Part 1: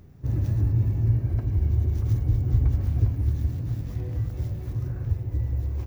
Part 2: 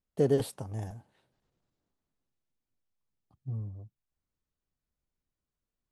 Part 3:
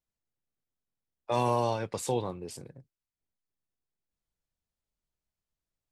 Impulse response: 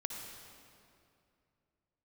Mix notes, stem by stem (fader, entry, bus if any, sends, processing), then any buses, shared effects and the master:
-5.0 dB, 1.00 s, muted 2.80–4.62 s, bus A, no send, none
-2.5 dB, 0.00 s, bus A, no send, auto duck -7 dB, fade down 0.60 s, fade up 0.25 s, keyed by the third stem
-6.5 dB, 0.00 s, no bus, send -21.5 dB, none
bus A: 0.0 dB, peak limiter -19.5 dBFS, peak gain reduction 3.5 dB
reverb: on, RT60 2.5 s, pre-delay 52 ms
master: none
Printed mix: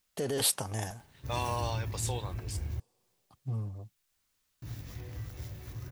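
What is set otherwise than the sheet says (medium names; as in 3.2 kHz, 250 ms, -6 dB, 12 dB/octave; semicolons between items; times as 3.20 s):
stem 2 -2.5 dB -> +9.5 dB; master: extra tilt shelf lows -8.5 dB, about 860 Hz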